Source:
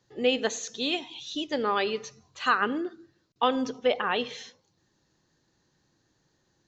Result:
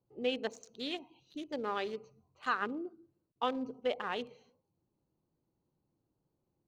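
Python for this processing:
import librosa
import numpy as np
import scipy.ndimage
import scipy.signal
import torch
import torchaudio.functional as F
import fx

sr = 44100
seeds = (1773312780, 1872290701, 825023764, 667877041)

y = fx.wiener(x, sr, points=25)
y = y * librosa.db_to_amplitude(-8.5)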